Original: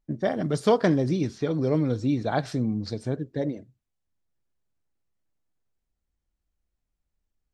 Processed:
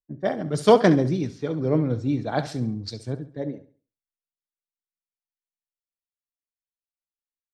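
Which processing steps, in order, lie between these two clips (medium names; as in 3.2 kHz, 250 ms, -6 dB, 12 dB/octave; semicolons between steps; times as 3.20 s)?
feedback delay 69 ms, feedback 47%, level -13 dB; three bands expanded up and down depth 100%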